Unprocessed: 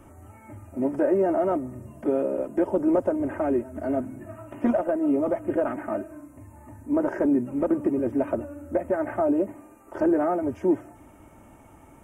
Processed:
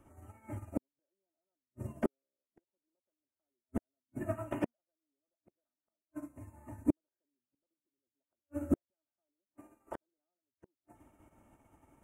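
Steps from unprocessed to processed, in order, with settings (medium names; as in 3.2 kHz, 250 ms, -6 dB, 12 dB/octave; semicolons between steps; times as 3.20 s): inverted gate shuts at -26 dBFS, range -41 dB; upward expansion 2.5:1, over -60 dBFS; trim +11 dB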